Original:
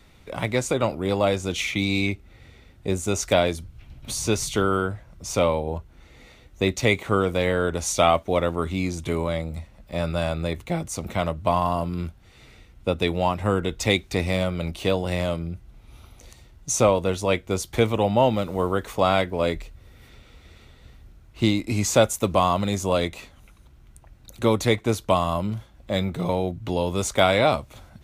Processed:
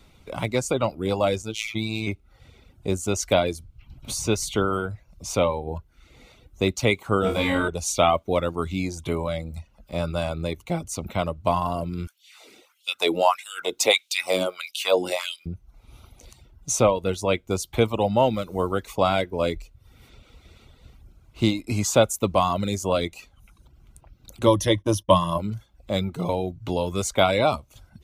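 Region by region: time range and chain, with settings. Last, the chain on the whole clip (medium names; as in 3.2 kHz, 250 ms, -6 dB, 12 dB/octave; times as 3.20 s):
1.42–2.07 s: band-stop 1.7 kHz, Q 6.2 + robot voice 110 Hz
7.21–7.68 s: doubling 12 ms -5 dB + flutter echo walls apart 4.4 m, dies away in 0.68 s
12.07–15.46 s: treble shelf 3.6 kHz +9.5 dB + LFO high-pass sine 1.6 Hz 290–3300 Hz
24.46–25.38 s: gate -41 dBFS, range -26 dB + rippled EQ curve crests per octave 1.2, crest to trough 14 dB
whole clip: reverb removal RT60 0.62 s; peaking EQ 1.8 kHz -10.5 dB 0.21 oct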